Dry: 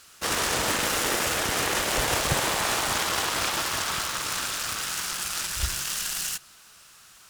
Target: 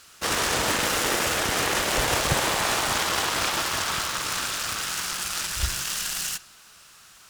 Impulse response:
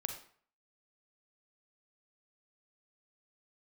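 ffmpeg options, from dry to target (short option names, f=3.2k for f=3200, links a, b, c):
-filter_complex "[0:a]asplit=2[a][b];[1:a]atrim=start_sample=2205,lowpass=8.6k[c];[b][c]afir=irnorm=-1:irlink=0,volume=-12dB[d];[a][d]amix=inputs=2:normalize=0"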